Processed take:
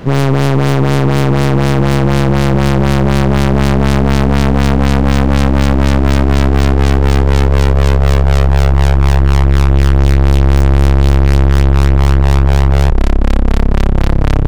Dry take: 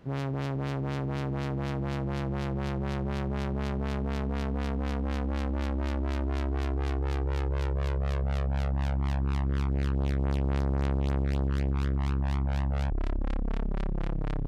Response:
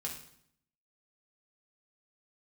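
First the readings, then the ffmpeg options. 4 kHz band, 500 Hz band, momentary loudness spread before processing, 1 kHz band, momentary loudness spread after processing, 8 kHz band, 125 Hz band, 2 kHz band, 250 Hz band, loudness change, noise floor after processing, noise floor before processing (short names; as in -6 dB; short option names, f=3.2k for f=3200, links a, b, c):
+21.5 dB, +19.5 dB, 3 LU, +20.0 dB, 2 LU, n/a, +19.5 dB, +20.5 dB, +19.0 dB, +19.5 dB, -11 dBFS, -31 dBFS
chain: -af "apsyclip=26dB,aeval=exprs='clip(val(0),-1,0.119)':c=same,aeval=exprs='1*(cos(1*acos(clip(val(0)/1,-1,1)))-cos(1*PI/2))+0.0891*(cos(6*acos(clip(val(0)/1,-1,1)))-cos(6*PI/2))':c=same,volume=-1dB"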